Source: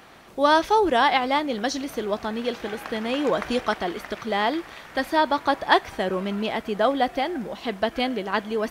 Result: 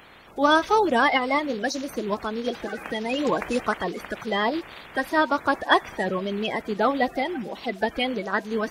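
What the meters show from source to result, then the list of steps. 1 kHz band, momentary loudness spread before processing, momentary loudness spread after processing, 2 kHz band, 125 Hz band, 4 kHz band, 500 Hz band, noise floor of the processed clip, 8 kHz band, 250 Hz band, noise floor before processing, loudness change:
−1.5 dB, 10 LU, 10 LU, +1.5 dB, 0.0 dB, −1.5 dB, −1.0 dB, −45 dBFS, −0.5 dB, 0.0 dB, −45 dBFS, −0.5 dB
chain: spectral magnitudes quantised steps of 30 dB

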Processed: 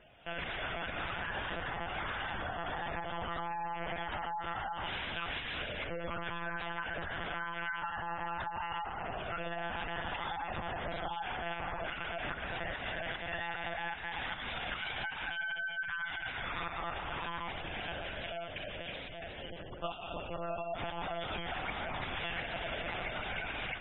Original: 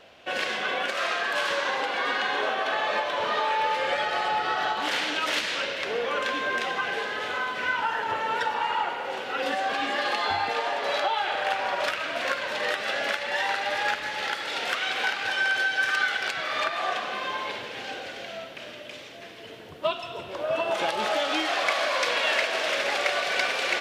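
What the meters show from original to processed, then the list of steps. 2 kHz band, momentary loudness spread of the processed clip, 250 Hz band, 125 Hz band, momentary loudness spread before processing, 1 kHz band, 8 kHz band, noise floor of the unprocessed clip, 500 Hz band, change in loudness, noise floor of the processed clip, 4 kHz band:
−11.5 dB, 3 LU, −6.0 dB, +6.0 dB, 9 LU, −11.0 dB, below −40 dB, −42 dBFS, −12.5 dB, −11.5 dB, −44 dBFS, −13.0 dB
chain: automatic gain control gain up to 8 dB
mains-hum notches 60/120/180/240/300/360/420/480/540 Hz
downward compressor 5 to 1, threshold −28 dBFS, peak gain reduction 13.5 dB
one-pitch LPC vocoder at 8 kHz 170 Hz
gate on every frequency bin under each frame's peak −20 dB strong
level −8 dB

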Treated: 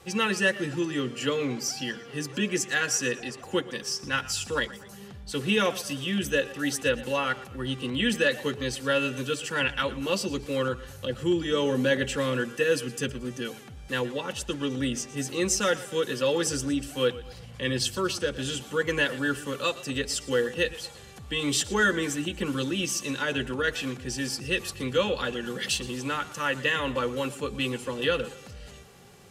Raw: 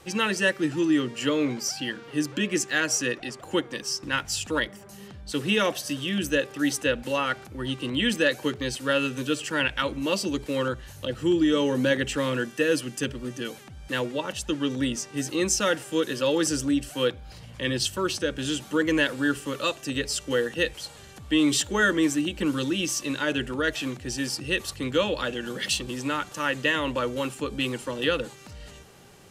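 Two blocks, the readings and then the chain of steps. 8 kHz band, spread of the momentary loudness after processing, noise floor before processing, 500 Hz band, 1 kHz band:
−1.0 dB, 8 LU, −46 dBFS, −0.5 dB, −1.0 dB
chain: notch comb filter 310 Hz
feedback echo with a swinging delay time 117 ms, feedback 44%, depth 72 cents, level −17.5 dB

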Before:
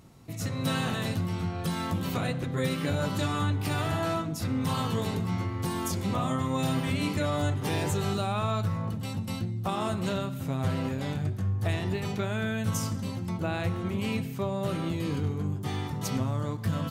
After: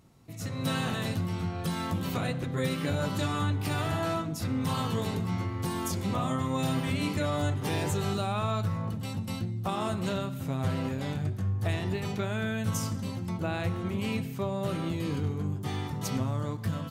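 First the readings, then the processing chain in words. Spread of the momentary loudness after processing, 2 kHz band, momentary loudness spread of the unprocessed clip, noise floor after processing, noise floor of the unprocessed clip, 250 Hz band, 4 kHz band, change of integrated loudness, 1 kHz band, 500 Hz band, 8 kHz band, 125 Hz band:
4 LU, −1.0 dB, 4 LU, −37 dBFS, −36 dBFS, −1.0 dB, −1.0 dB, −1.0 dB, −1.0 dB, −1.0 dB, −1.0 dB, −1.0 dB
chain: automatic gain control gain up to 5 dB
level −6 dB

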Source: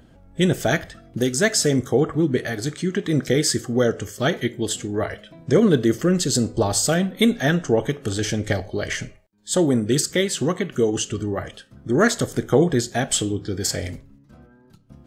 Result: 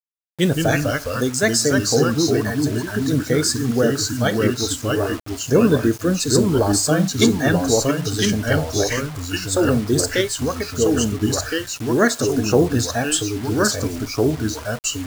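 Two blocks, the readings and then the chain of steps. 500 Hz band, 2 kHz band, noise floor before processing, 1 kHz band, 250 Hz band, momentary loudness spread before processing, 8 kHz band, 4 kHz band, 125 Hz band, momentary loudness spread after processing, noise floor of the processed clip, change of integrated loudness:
+2.0 dB, +3.0 dB, −53 dBFS, +3.5 dB, +2.5 dB, 9 LU, +3.5 dB, +3.0 dB, +3.0 dB, 6 LU, −34 dBFS, +2.0 dB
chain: delay with pitch and tempo change per echo 121 ms, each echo −2 semitones, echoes 2
noise reduction from a noise print of the clip's start 19 dB
bit-depth reduction 6 bits, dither none
level +1 dB

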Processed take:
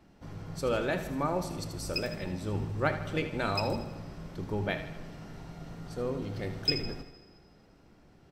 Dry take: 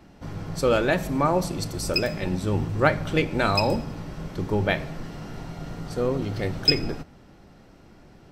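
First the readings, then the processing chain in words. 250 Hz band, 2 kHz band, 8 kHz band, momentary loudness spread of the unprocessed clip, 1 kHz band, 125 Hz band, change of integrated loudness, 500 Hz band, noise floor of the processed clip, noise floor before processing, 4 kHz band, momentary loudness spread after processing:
−8.5 dB, −8.5 dB, −8.5 dB, 15 LU, −8.5 dB, −8.0 dB, −8.5 dB, −8.5 dB, −59 dBFS, −51 dBFS, −8.5 dB, 15 LU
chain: on a send: repeating echo 78 ms, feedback 49%, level −11 dB
on the sum: dense smooth reverb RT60 2.3 s, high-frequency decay 0.75×, DRR 16.5 dB
level −9 dB

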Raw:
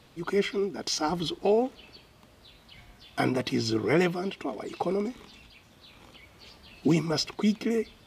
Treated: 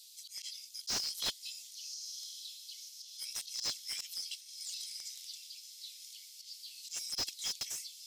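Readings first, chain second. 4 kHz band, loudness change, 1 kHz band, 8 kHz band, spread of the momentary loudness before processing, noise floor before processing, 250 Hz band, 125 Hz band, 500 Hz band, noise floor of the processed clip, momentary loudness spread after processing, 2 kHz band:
−1.5 dB, −11.5 dB, −22.0 dB, +2.5 dB, 9 LU, −57 dBFS, −34.5 dB, below −30 dB, −32.5 dB, −54 dBFS, 12 LU, −15.5 dB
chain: inverse Chebyshev high-pass filter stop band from 1,100 Hz, stop band 70 dB
volume swells 151 ms
feedback delay with all-pass diffusion 1,097 ms, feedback 54%, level −14 dB
slew-rate limiting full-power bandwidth 26 Hz
level +13.5 dB

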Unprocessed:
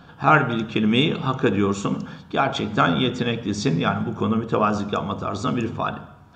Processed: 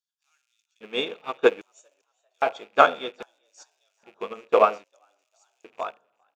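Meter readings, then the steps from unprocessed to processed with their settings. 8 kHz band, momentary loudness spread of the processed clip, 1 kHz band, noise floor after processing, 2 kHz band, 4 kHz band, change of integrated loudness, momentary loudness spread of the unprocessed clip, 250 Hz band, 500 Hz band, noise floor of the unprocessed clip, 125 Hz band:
below −10 dB, 18 LU, −3.0 dB, −79 dBFS, −5.0 dB, −8.0 dB, −1.5 dB, 9 LU, −18.0 dB, 0.0 dB, −47 dBFS, below −30 dB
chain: loose part that buzzes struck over −31 dBFS, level −21 dBFS
auto-filter high-pass square 0.62 Hz 520–6,600 Hz
echo with shifted repeats 399 ms, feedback 47%, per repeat +88 Hz, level −18 dB
expander for the loud parts 2.5 to 1, over −33 dBFS
level +2.5 dB

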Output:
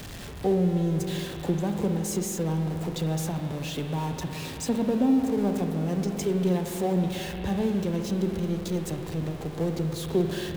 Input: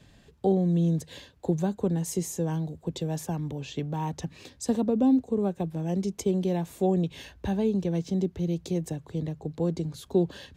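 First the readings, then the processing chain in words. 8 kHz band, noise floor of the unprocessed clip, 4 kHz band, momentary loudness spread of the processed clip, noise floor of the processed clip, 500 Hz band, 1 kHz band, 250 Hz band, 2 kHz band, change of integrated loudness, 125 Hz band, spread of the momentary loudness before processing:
+3.0 dB, −57 dBFS, +6.0 dB, 8 LU, −38 dBFS, +0.5 dB, +1.5 dB, +1.0 dB, +7.0 dB, +1.0 dB, +1.0 dB, 10 LU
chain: converter with a step at zero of −33 dBFS
spring reverb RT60 3.5 s, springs 44/49 ms, chirp 25 ms, DRR 4 dB
level −2 dB

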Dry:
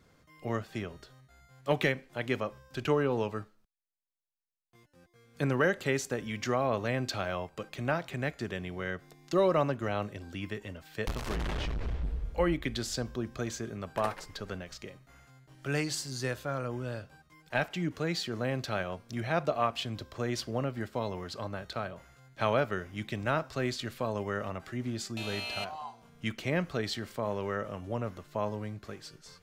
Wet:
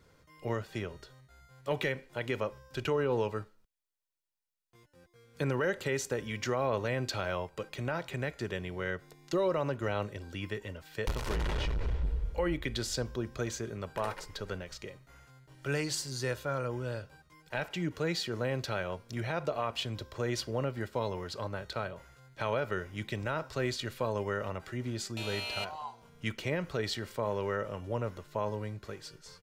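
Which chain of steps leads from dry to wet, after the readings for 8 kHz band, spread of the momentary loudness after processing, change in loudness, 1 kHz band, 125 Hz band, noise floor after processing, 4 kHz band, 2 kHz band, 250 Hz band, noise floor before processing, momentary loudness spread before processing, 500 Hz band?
+0.5 dB, 10 LU, −1.5 dB, −2.5 dB, −0.5 dB, −65 dBFS, 0.0 dB, −2.0 dB, −3.0 dB, −65 dBFS, 12 LU, −1.0 dB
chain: comb filter 2.1 ms, depth 32%
brickwall limiter −21.5 dBFS, peak gain reduction 7 dB

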